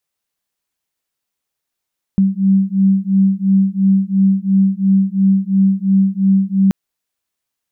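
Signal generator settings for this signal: beating tones 192 Hz, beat 2.9 Hz, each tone -13.5 dBFS 4.53 s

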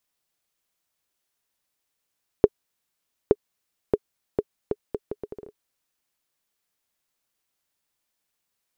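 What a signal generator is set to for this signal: bouncing ball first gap 0.87 s, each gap 0.72, 417 Hz, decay 43 ms -1.5 dBFS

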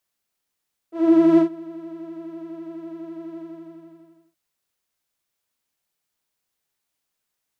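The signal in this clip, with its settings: synth patch with pulse-width modulation E4, oscillator 2 saw, interval +12 st, sub -27 dB, filter bandpass, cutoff 120 Hz, Q 2.2, filter envelope 2 oct, filter decay 0.34 s, attack 459 ms, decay 0.11 s, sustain -22.5 dB, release 0.97 s, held 2.46 s, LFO 12 Hz, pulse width 28%, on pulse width 15%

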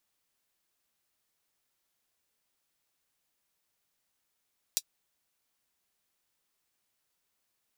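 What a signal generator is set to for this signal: closed hi-hat, high-pass 4.5 kHz, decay 0.06 s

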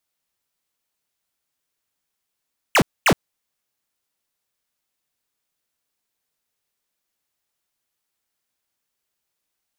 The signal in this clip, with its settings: burst of laser zaps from 3.2 kHz, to 110 Hz, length 0.07 s square, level -14 dB, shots 2, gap 0.24 s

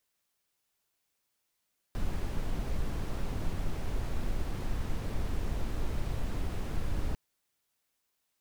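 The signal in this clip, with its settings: noise brown, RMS -30.5 dBFS 5.20 s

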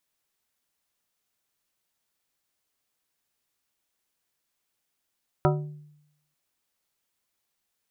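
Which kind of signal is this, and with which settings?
glass hit plate, lowest mode 149 Hz, modes 7, decay 0.83 s, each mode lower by 1.5 dB, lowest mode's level -19 dB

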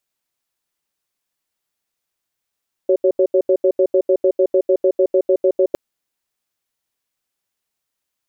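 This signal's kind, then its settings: cadence 378 Hz, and 555 Hz, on 0.07 s, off 0.08 s, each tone -13.5 dBFS 2.86 s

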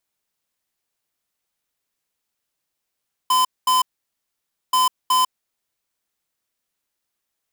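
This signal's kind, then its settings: beep pattern square 1.02 kHz, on 0.15 s, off 0.22 s, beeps 2, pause 0.91 s, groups 2, -16.5 dBFS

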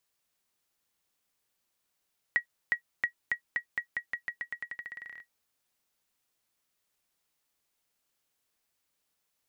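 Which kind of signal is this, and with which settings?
bouncing ball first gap 0.36 s, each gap 0.88, 1.91 kHz, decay 97 ms -15.5 dBFS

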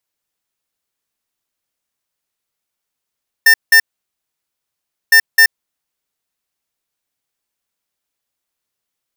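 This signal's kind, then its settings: beep pattern square 1.8 kHz, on 0.08 s, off 0.18 s, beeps 2, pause 1.32 s, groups 2, -7 dBFS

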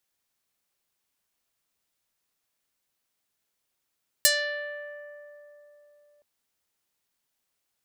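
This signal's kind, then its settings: plucked string D5, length 1.97 s, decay 3.82 s, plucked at 0.48, medium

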